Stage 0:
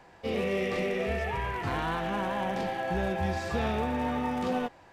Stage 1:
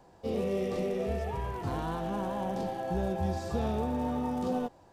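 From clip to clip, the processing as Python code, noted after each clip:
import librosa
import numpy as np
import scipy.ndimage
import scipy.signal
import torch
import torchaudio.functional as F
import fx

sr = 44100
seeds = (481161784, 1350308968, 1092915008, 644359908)

y = fx.peak_eq(x, sr, hz=2100.0, db=-14.5, octaves=1.5)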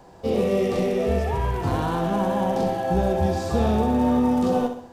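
y = fx.echo_feedback(x, sr, ms=65, feedback_pct=46, wet_db=-8)
y = y * 10.0 ** (9.0 / 20.0)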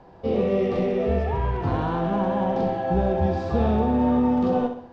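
y = fx.air_absorb(x, sr, metres=230.0)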